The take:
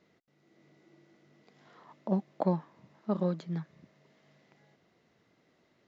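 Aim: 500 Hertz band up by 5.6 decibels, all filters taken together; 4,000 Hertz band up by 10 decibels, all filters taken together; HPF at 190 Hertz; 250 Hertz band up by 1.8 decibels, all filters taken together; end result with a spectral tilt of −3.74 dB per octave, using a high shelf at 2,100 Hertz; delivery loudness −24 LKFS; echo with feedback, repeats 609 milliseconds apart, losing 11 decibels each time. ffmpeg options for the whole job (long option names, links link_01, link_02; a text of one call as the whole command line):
ffmpeg -i in.wav -af "highpass=190,equalizer=frequency=250:width_type=o:gain=6,equalizer=frequency=500:width_type=o:gain=5,highshelf=frequency=2100:gain=5.5,equalizer=frequency=4000:width_type=o:gain=6.5,aecho=1:1:609|1218|1827:0.282|0.0789|0.0221,volume=7.5dB" out.wav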